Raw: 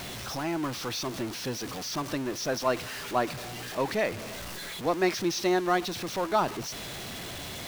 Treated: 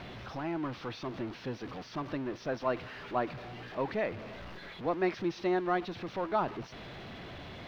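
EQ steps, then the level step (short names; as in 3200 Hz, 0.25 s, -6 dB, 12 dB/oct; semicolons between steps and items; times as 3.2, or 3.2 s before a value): air absorption 310 m; -3.5 dB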